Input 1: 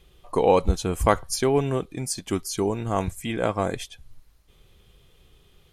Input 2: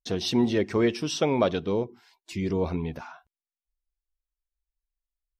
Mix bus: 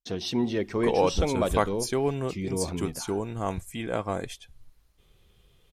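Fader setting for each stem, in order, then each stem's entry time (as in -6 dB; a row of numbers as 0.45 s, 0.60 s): -5.0 dB, -3.5 dB; 0.50 s, 0.00 s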